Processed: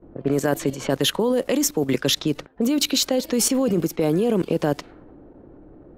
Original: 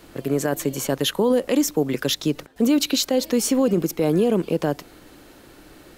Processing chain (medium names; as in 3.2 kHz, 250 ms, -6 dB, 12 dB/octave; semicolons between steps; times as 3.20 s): level-controlled noise filter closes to 530 Hz, open at -18 dBFS; level held to a coarse grid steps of 13 dB; tape noise reduction on one side only decoder only; trim +6.5 dB